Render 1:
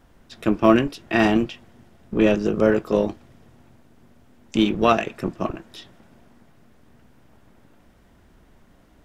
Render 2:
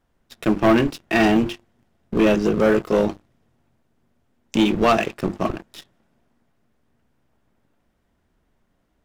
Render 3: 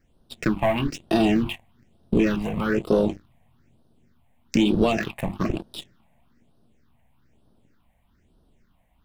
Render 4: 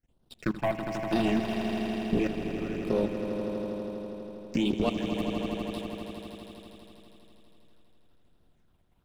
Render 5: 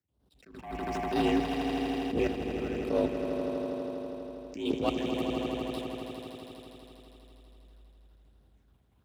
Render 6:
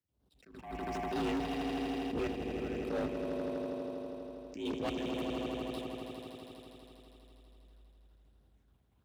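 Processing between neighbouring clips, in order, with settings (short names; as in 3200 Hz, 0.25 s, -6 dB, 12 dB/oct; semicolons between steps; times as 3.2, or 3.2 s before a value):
notches 50/100/150/200/250/300/350 Hz; sample leveller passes 3; gain -7 dB
compressor 6:1, threshold -21 dBFS, peak gain reduction 8.5 dB; phaser stages 6, 1.1 Hz, lowest notch 350–2100 Hz; gain +5 dB
level quantiser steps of 21 dB; swelling echo 81 ms, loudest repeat 5, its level -9 dB; gain -4.5 dB
frequency shift +52 Hz; attack slew limiter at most 100 dB/s
hard clip -26.5 dBFS, distortion -11 dB; gain -4 dB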